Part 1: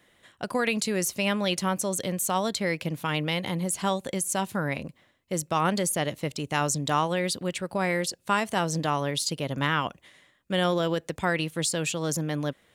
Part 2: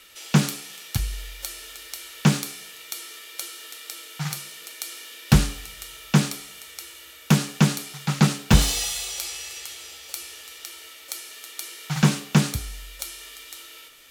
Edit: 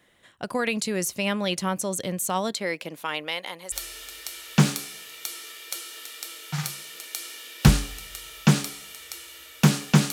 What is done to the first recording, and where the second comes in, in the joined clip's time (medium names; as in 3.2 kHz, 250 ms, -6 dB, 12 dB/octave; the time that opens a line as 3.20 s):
part 1
2.51–3.72 s: high-pass 230 Hz -> 810 Hz
3.72 s: go over to part 2 from 1.39 s